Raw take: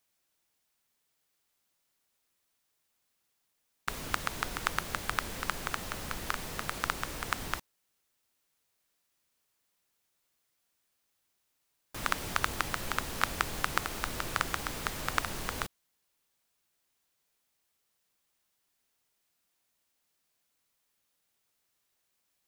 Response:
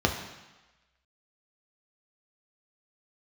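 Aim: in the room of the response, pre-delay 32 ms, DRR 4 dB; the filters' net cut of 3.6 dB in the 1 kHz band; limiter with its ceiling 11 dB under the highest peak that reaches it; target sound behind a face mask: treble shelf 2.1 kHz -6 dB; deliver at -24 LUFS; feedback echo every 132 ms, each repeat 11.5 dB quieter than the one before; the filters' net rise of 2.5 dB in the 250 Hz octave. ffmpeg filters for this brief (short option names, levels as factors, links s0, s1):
-filter_complex "[0:a]equalizer=f=250:t=o:g=3.5,equalizer=f=1000:t=o:g=-3,alimiter=limit=0.168:level=0:latency=1,aecho=1:1:132|264|396:0.266|0.0718|0.0194,asplit=2[s0][s1];[1:a]atrim=start_sample=2205,adelay=32[s2];[s1][s2]afir=irnorm=-1:irlink=0,volume=0.141[s3];[s0][s3]amix=inputs=2:normalize=0,highshelf=f=2100:g=-6,volume=5.01"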